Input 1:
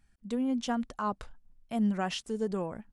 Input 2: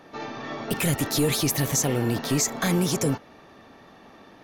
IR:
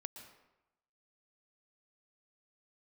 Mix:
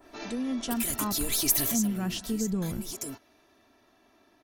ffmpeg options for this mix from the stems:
-filter_complex "[0:a]asubboost=boost=10.5:cutoff=220,acompressor=threshold=-24dB:ratio=6,volume=-4dB,asplit=3[link_01][link_02][link_03];[link_02]volume=-7dB[link_04];[1:a]aecho=1:1:3:0.68,adynamicequalizer=threshold=0.00562:dfrequency=2200:dqfactor=0.7:tfrequency=2200:tqfactor=0.7:attack=5:release=100:ratio=0.375:range=2:mode=boostabove:tftype=highshelf,volume=-7.5dB,afade=type=out:start_time=1.56:duration=0.72:silence=0.398107[link_05];[link_03]apad=whole_len=195720[link_06];[link_05][link_06]sidechaincompress=threshold=-37dB:ratio=8:attack=16:release=674[link_07];[2:a]atrim=start_sample=2205[link_08];[link_04][link_08]afir=irnorm=-1:irlink=0[link_09];[link_01][link_07][link_09]amix=inputs=3:normalize=0,crystalizer=i=1.5:c=0"

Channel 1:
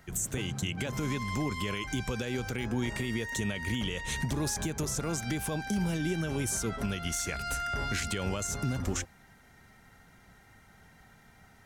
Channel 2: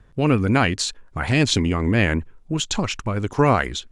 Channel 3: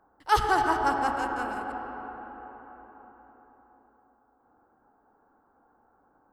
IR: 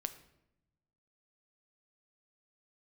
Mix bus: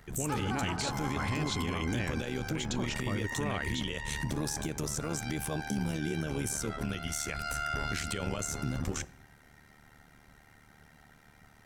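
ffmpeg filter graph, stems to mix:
-filter_complex "[0:a]bandreject=frequency=6700:width=24,tremolo=f=74:d=0.824,volume=0dB,asplit=2[link_01][link_02];[link_02]volume=-6.5dB[link_03];[1:a]acompressor=threshold=-22dB:ratio=6,volume=-7.5dB[link_04];[2:a]volume=-12.5dB[link_05];[3:a]atrim=start_sample=2205[link_06];[link_03][link_06]afir=irnorm=-1:irlink=0[link_07];[link_01][link_04][link_05][link_07]amix=inputs=4:normalize=0,alimiter=limit=-23dB:level=0:latency=1:release=21"

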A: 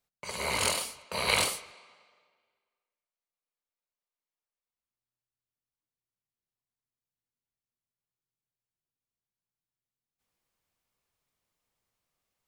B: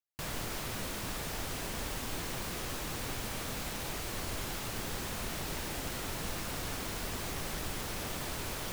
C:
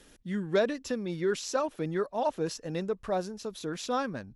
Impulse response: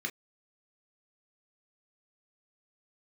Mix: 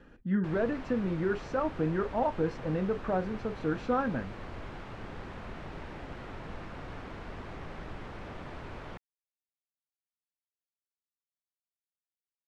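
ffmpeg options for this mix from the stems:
-filter_complex "[1:a]adelay=250,volume=-2.5dB[link_01];[2:a]alimiter=limit=-23dB:level=0:latency=1:release=135,volume=2.5dB,asplit=2[link_02][link_03];[link_03]volume=-8.5dB[link_04];[3:a]atrim=start_sample=2205[link_05];[link_04][link_05]afir=irnorm=-1:irlink=0[link_06];[link_01][link_02][link_06]amix=inputs=3:normalize=0,lowpass=1900"

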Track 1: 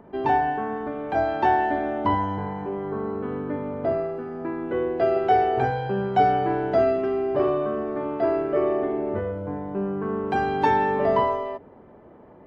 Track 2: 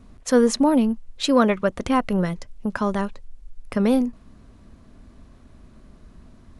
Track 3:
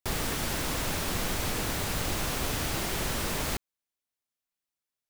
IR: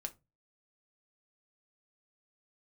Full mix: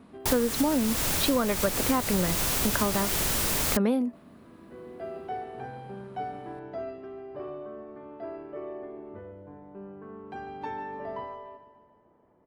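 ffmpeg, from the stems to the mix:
-filter_complex "[0:a]volume=-16dB,asplit=2[link_01][link_02];[link_02]volume=-13.5dB[link_03];[1:a]highpass=170,equalizer=frequency=6200:width=1.6:gain=-11.5,volume=1.5dB,asplit=2[link_04][link_05];[2:a]highshelf=frequency=5600:gain=9.5,adelay=200,volume=1.5dB[link_06];[link_05]apad=whole_len=549794[link_07];[link_01][link_07]sidechaincompress=threshold=-36dB:ratio=8:attack=16:release=711[link_08];[link_03]aecho=0:1:146|292|438|584|730|876|1022|1168|1314:1|0.57|0.325|0.185|0.106|0.0602|0.0343|0.0195|0.0111[link_09];[link_08][link_04][link_06][link_09]amix=inputs=4:normalize=0,acompressor=threshold=-21dB:ratio=12"

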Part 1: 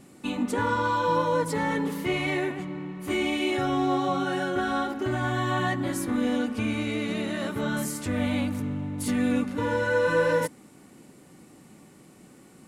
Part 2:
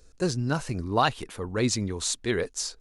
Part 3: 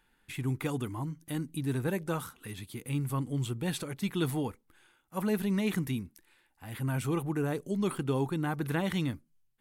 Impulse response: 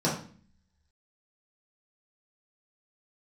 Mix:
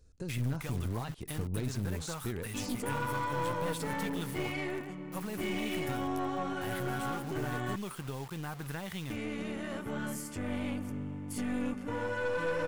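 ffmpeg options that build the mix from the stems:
-filter_complex "[0:a]bandreject=frequency=3900:width=5.6,adelay=2300,volume=-14dB,asplit=3[link_01][link_02][link_03];[link_01]atrim=end=7.76,asetpts=PTS-STARTPTS,afade=type=out:start_time=7.756:duration=0.004:curve=hsin[link_04];[link_02]atrim=start=7.76:end=9.1,asetpts=PTS-STARTPTS,volume=0[link_05];[link_03]atrim=start=9.1,asetpts=PTS-STARTPTS,afade=type=in:duration=0.004:curve=hsin[link_06];[link_04][link_05][link_06]concat=n=3:v=0:a=1[link_07];[1:a]asoftclip=type=tanh:threshold=-12.5dB,acompressor=threshold=-36dB:ratio=6,equalizer=frequency=95:width_type=o:width=2.9:gain=13,volume=-11dB[link_08];[2:a]equalizer=frequency=300:width=1.4:gain=-10,acompressor=threshold=-43dB:ratio=5,acrusher=bits=8:mix=0:aa=0.000001,volume=-1dB[link_09];[link_07][link_08][link_09]amix=inputs=3:normalize=0,dynaudnorm=framelen=170:gausssize=3:maxgain=8dB,aeval=exprs='(tanh(22.4*val(0)+0.5)-tanh(0.5))/22.4':channel_layout=same"

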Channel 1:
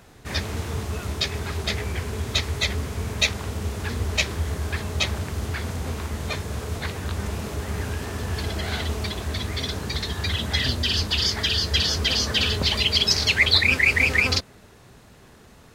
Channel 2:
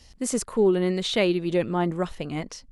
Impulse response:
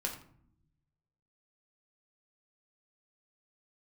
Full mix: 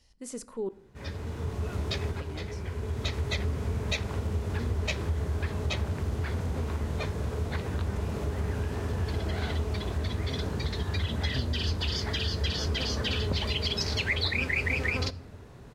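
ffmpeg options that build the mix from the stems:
-filter_complex "[0:a]tiltshelf=frequency=1100:gain=4,highshelf=frequency=7000:gain=-5,adelay=700,volume=-3.5dB,asplit=2[link_01][link_02];[link_02]volume=-14.5dB[link_03];[1:a]volume=-14dB,asplit=3[link_04][link_05][link_06];[link_04]atrim=end=0.69,asetpts=PTS-STARTPTS,afade=type=out:start_time=0.686:duration=0.004:curve=hsin[link_07];[link_05]atrim=start=0.69:end=2.11,asetpts=PTS-STARTPTS,volume=0[link_08];[link_06]atrim=start=2.11,asetpts=PTS-STARTPTS,afade=type=in:duration=0.004:curve=hsin[link_09];[link_07][link_08][link_09]concat=n=3:v=0:a=1,asplit=3[link_10][link_11][link_12];[link_11]volume=-11.5dB[link_13];[link_12]apad=whole_len=725188[link_14];[link_01][link_14]sidechaincompress=threshold=-52dB:ratio=8:attack=10:release=762[link_15];[2:a]atrim=start_sample=2205[link_16];[link_03][link_13]amix=inputs=2:normalize=0[link_17];[link_17][link_16]afir=irnorm=-1:irlink=0[link_18];[link_15][link_10][link_18]amix=inputs=3:normalize=0,acompressor=threshold=-29dB:ratio=2"

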